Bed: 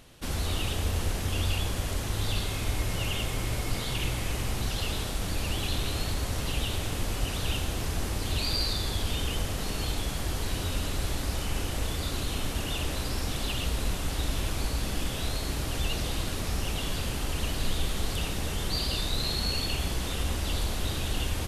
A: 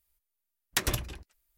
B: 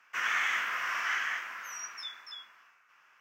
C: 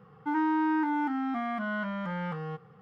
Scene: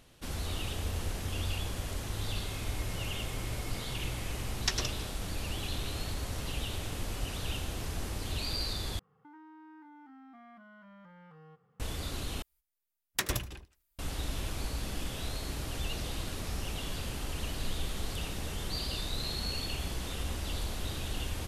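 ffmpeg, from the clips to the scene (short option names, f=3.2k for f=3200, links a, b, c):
-filter_complex "[1:a]asplit=2[a][b];[0:a]volume=-6dB[c];[a]lowpass=f=5.5k:t=q:w=3.5[d];[3:a]acompressor=threshold=-36dB:ratio=6:attack=3.2:release=140:knee=1:detection=peak[e];[b]aecho=1:1:77|154:0.0944|0.0293[f];[c]asplit=3[g][h][i];[g]atrim=end=8.994[j];[e]atrim=end=2.81,asetpts=PTS-STARTPTS,volume=-15dB[k];[h]atrim=start=11.796:end=12.424[l];[f]atrim=end=1.57,asetpts=PTS-STARTPTS,volume=-3dB[m];[i]atrim=start=13.986[n];[d]atrim=end=1.57,asetpts=PTS-STARTPTS,volume=-6.5dB,afade=t=in:d=0.004:c=hsin,afade=t=out:st=1.566:d=0.004:c=hsin,adelay=3910[o];[j][k]acrossfade=d=0.004:c1=hsin:c2=hsin[p];[p][l]acrossfade=d=0.004:c1=hsin:c2=hsin[q];[q][m]acrossfade=d=0.004:c1=hsin:c2=hsin[r];[r][n]acrossfade=d=0.004:c1=hsin:c2=hsin[s];[s][o]amix=inputs=2:normalize=0"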